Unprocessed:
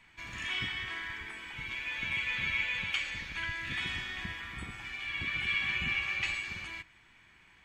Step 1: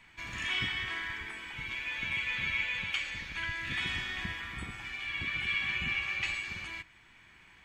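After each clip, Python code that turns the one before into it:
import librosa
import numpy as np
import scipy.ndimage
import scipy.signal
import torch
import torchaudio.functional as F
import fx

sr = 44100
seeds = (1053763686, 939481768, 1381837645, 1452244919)

y = fx.rider(x, sr, range_db=3, speed_s=2.0)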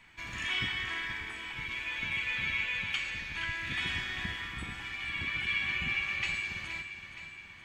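y = fx.echo_feedback(x, sr, ms=470, feedback_pct=58, wet_db=-11.0)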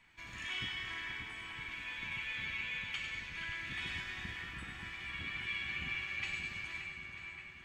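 y = fx.echo_split(x, sr, split_hz=2700.0, low_ms=578, high_ms=98, feedback_pct=52, wet_db=-6)
y = y * 10.0 ** (-7.5 / 20.0)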